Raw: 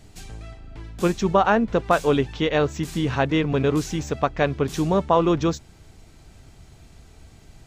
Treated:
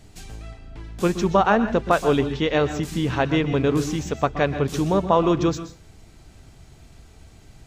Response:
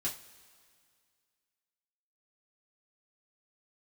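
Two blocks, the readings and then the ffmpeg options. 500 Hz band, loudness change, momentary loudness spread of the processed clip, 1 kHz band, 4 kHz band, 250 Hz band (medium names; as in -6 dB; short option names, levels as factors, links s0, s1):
+0.5 dB, +0.5 dB, 21 LU, +0.5 dB, +0.5 dB, +0.5 dB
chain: -filter_complex "[0:a]asplit=2[s0][s1];[1:a]atrim=start_sample=2205,afade=t=out:st=0.19:d=0.01,atrim=end_sample=8820,adelay=122[s2];[s1][s2]afir=irnorm=-1:irlink=0,volume=0.224[s3];[s0][s3]amix=inputs=2:normalize=0"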